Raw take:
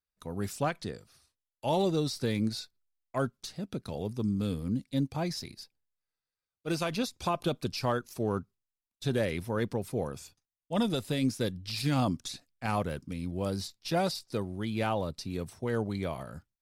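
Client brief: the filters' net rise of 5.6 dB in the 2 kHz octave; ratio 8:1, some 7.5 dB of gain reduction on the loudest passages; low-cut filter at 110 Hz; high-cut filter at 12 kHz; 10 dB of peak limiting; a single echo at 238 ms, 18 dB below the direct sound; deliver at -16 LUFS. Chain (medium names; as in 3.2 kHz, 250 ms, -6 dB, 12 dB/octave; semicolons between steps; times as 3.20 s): high-pass 110 Hz; low-pass 12 kHz; peaking EQ 2 kHz +7.5 dB; compression 8:1, threshold -31 dBFS; peak limiter -28.5 dBFS; delay 238 ms -18 dB; trim +24 dB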